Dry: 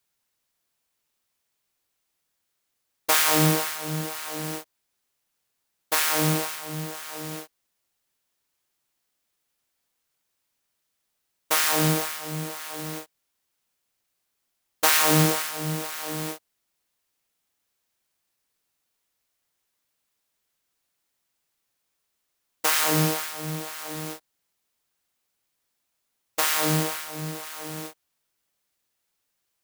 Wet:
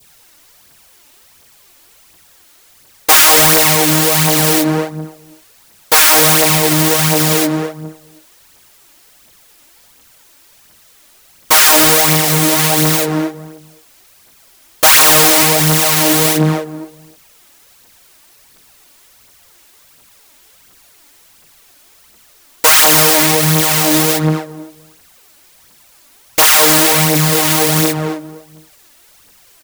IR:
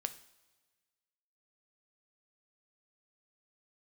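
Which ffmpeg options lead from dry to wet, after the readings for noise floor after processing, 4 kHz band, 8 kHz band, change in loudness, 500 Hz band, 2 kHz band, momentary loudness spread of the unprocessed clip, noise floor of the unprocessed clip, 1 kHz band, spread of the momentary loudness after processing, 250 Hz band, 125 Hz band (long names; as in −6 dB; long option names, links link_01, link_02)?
−48 dBFS, +16.5 dB, +17.0 dB, +15.5 dB, +15.5 dB, +15.0 dB, 16 LU, −78 dBFS, +14.5 dB, 14 LU, +14.5 dB, +12.5 dB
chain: -filter_complex "[0:a]asplit=2[link_01][link_02];[link_02]adelay=263,lowpass=frequency=910:poles=1,volume=-9.5dB,asplit=2[link_03][link_04];[link_04]adelay=263,lowpass=frequency=910:poles=1,volume=0.21,asplit=2[link_05][link_06];[link_06]adelay=263,lowpass=frequency=910:poles=1,volume=0.21[link_07];[link_01][link_03][link_05][link_07]amix=inputs=4:normalize=0,aphaser=in_gain=1:out_gain=1:delay=3.6:decay=0.5:speed=1.4:type=triangular,acrossover=split=520[link_08][link_09];[link_08]acompressor=threshold=-35dB:ratio=6[link_10];[link_10][link_09]amix=inputs=2:normalize=0,asoftclip=type=tanh:threshold=-21dB,adynamicequalizer=threshold=0.00631:dfrequency=1400:dqfactor=1.2:tfrequency=1400:tqfactor=1.2:attack=5:release=100:ratio=0.375:range=2.5:mode=cutabove:tftype=bell,alimiter=level_in=31dB:limit=-1dB:release=50:level=0:latency=1,volume=-2dB"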